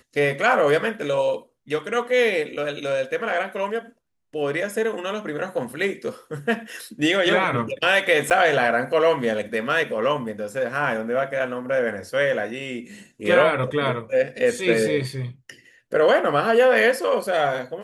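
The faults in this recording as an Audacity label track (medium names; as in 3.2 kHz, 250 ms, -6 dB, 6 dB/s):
8.300000	8.310000	dropout 8.8 ms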